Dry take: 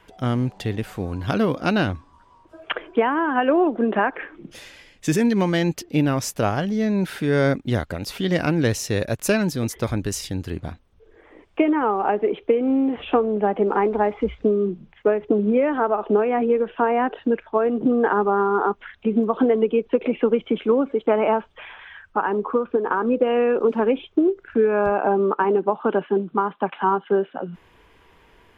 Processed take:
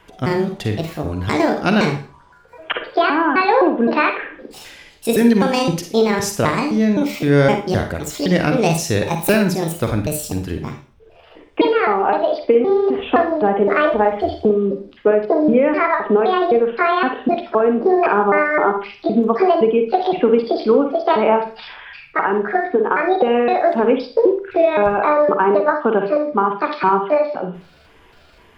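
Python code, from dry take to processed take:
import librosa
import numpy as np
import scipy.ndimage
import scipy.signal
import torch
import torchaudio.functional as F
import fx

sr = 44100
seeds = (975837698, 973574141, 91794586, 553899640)

y = fx.pitch_trill(x, sr, semitones=7.0, every_ms=258)
y = fx.rev_schroeder(y, sr, rt60_s=0.38, comb_ms=38, drr_db=5.5)
y = y * librosa.db_to_amplitude(4.0)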